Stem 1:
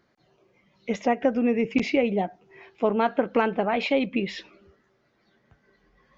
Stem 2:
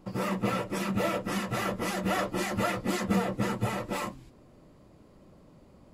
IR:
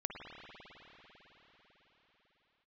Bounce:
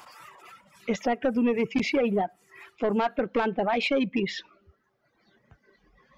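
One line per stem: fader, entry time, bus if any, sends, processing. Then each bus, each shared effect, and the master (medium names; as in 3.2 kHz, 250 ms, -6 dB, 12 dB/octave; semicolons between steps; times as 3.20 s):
+3.0 dB, 0.00 s, no send, saturation -16.5 dBFS, distortion -14 dB
2.78 s -9.5 dB -> 3.29 s -19.5 dB, 0.00 s, no send, high-pass 890 Hz 24 dB/octave; band-stop 4.1 kHz; swell ahead of each attack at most 24 dB/s; auto duck -15 dB, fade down 1.50 s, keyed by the first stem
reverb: none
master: reverb removal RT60 1.1 s; peak limiter -17.5 dBFS, peak gain reduction 4 dB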